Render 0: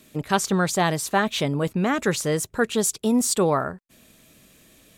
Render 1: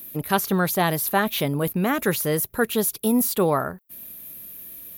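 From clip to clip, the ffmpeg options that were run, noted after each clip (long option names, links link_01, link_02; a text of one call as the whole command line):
ffmpeg -i in.wav -filter_complex "[0:a]acrossover=split=4200[link_01][link_02];[link_02]acompressor=threshold=-34dB:ratio=4:attack=1:release=60[link_03];[link_01][link_03]amix=inputs=2:normalize=0,aexciter=amount=15.6:drive=6.2:freq=11000" out.wav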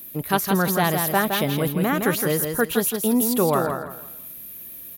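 ffmpeg -i in.wav -af "aecho=1:1:165|330|495|660:0.531|0.154|0.0446|0.0129" out.wav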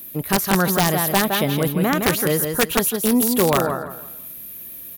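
ffmpeg -i in.wav -af "aeval=exprs='(mod(3.55*val(0)+1,2)-1)/3.55':channel_layout=same,volume=2.5dB" out.wav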